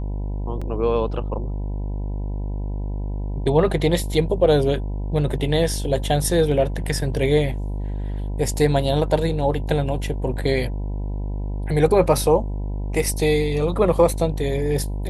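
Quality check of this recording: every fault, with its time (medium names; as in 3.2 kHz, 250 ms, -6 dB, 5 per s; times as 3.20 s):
buzz 50 Hz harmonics 20 -26 dBFS
0.61–0.62 s: dropout 5.6 ms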